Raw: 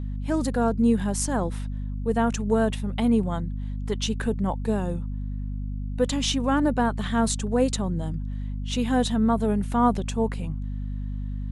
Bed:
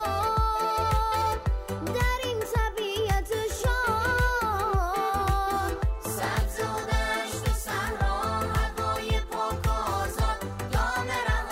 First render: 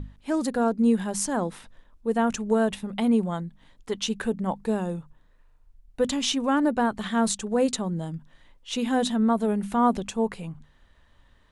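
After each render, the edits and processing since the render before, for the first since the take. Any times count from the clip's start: hum notches 50/100/150/200/250 Hz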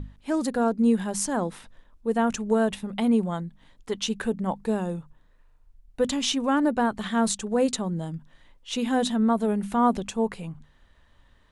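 no audible change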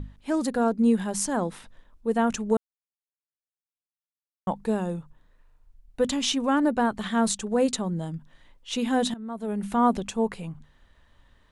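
2.57–4.47 s: mute; 9.14–9.66 s: fade in quadratic, from -17 dB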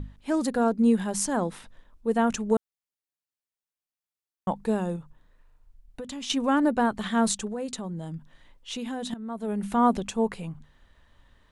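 4.96–6.30 s: compression, threshold -34 dBFS; 7.47–9.13 s: compression 3:1, threshold -32 dBFS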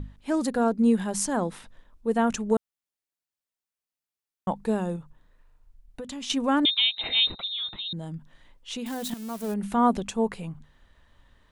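6.65–7.93 s: frequency inversion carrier 3.9 kHz; 8.86–9.54 s: zero-crossing glitches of -29.5 dBFS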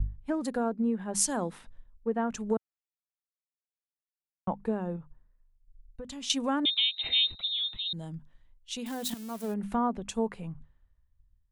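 compression 4:1, threshold -29 dBFS, peak gain reduction 11 dB; three bands expanded up and down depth 100%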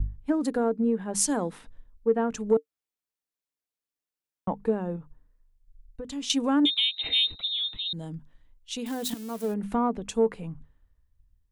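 small resonant body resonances 290/450 Hz, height 8 dB, ringing for 80 ms; in parallel at -12 dB: saturation -21 dBFS, distortion -14 dB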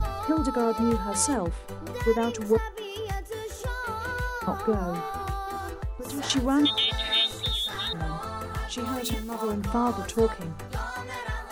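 add bed -6.5 dB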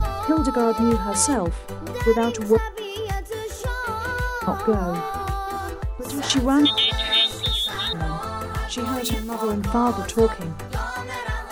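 trim +5 dB

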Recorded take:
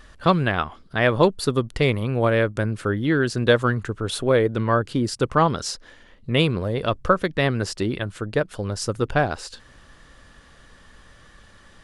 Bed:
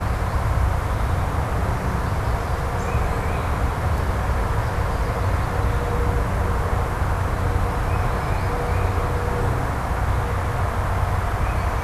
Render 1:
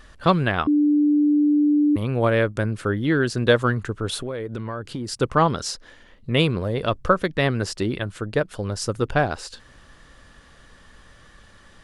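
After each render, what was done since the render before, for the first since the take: 0.67–1.96 s: bleep 295 Hz -14.5 dBFS; 4.14–5.10 s: compression 16:1, threshold -25 dBFS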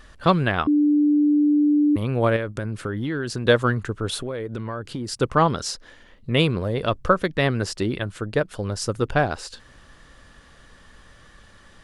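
2.36–3.45 s: compression 10:1, threshold -22 dBFS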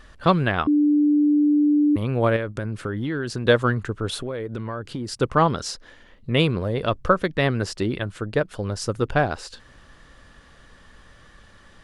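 treble shelf 6.3 kHz -4.5 dB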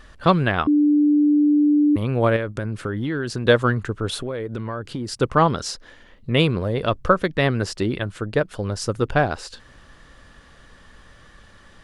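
trim +1.5 dB

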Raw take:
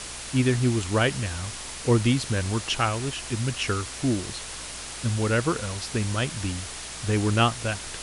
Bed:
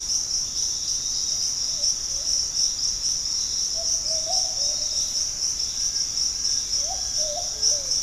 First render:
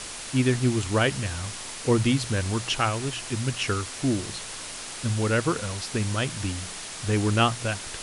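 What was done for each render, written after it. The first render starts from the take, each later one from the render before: de-hum 60 Hz, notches 3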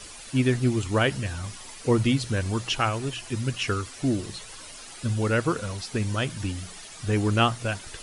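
noise reduction 11 dB, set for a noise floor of -38 dBFS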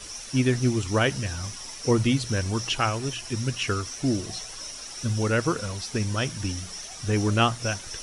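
add bed -15.5 dB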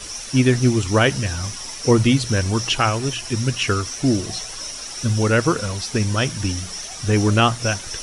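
trim +6.5 dB; peak limiter -3 dBFS, peak gain reduction 2.5 dB

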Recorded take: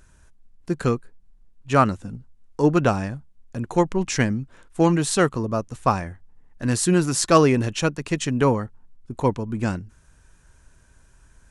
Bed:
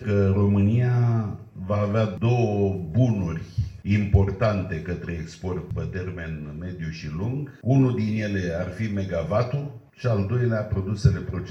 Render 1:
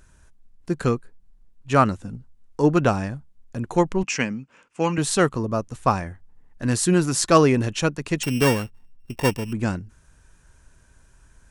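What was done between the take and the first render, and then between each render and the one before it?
4.03–4.98 s: cabinet simulation 220–7600 Hz, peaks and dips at 350 Hz -9 dB, 680 Hz -6 dB, 1.7 kHz -3 dB, 2.6 kHz +9 dB, 3.8 kHz -9 dB; 8.23–9.53 s: sorted samples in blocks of 16 samples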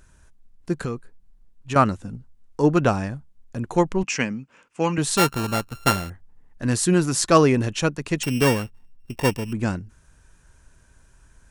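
0.74–1.76 s: compression 5:1, threshold -23 dBFS; 5.17–6.10 s: sorted samples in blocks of 32 samples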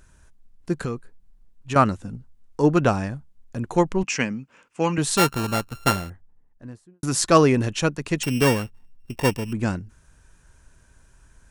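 5.72–7.03 s: studio fade out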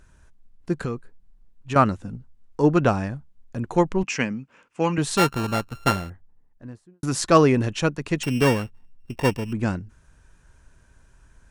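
treble shelf 5.9 kHz -7.5 dB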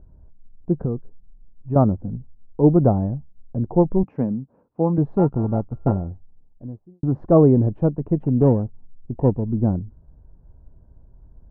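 Chebyshev low-pass 760 Hz, order 3; bass shelf 400 Hz +7 dB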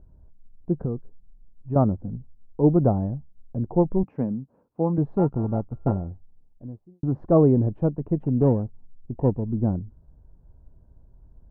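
trim -3.5 dB

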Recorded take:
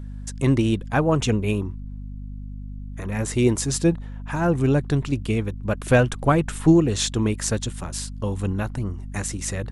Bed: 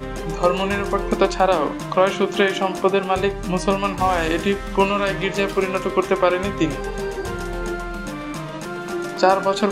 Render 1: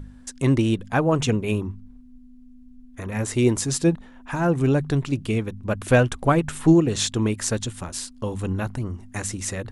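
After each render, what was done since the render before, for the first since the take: de-hum 50 Hz, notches 4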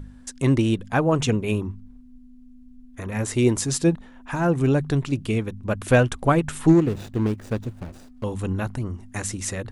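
6.69–8.24 s: median filter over 41 samples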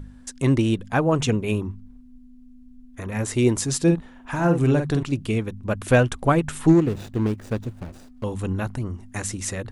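3.83–5.03 s: doubling 47 ms -6 dB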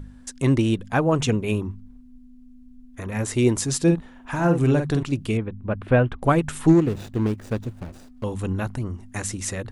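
5.37–6.22 s: distance through air 430 m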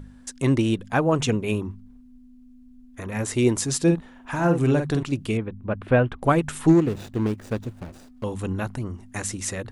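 bass shelf 110 Hz -5 dB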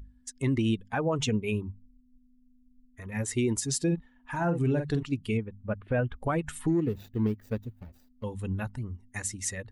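expander on every frequency bin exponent 1.5; peak limiter -19 dBFS, peak gain reduction 11.5 dB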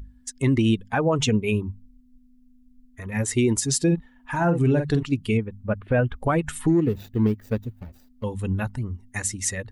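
trim +6.5 dB

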